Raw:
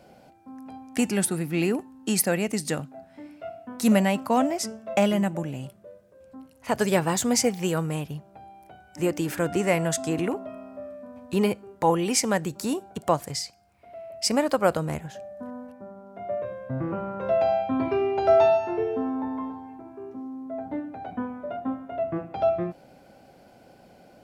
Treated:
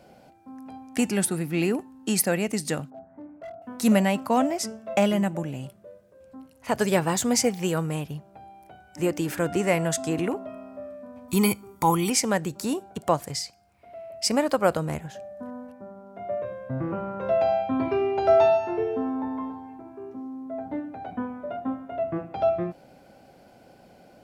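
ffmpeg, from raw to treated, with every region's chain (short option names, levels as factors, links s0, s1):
-filter_complex "[0:a]asettb=1/sr,asplit=3[s0][s1][s2];[s0]atrim=end=2.904[s3];[s1]atrim=start=2.9:end=3.62,asetpts=PTS-STARTPTS,afade=t=in:d=0.004:c=qsin,afade=t=out:st=0.716:d=0.004:c=qsin,lowpass=f=1300:w=0.5412,lowpass=f=1300:w=1.3066,asoftclip=type=hard:threshold=0.0168[s4];[s2]atrim=start=3.616[s5];[s3][s4]acrossfade=d=0.004:c1=hsin:c2=qsin[s6];[s6][s5]acrossfade=d=0.004:c1=qsin:c2=hsin,asettb=1/sr,asplit=3[s7][s8][s9];[s7]atrim=end=11.284[s10];[s8]atrim=start=11.28:end=12.1,asetpts=PTS-STARTPTS,afade=t=in:d=0.004:c=qsin,afade=t=out:st=0.816:d=0.004:c=qsin,aemphasis=mode=production:type=50fm,aecho=1:1:0.9:0.68,atrim=end_sample=36162[s11];[s9]atrim=start=12.096[s12];[s10][s11]acrossfade=d=0.004:c1=hsin:c2=qsin[s13];[s13][s12]acrossfade=d=0.004:c1=qsin:c2=hsin"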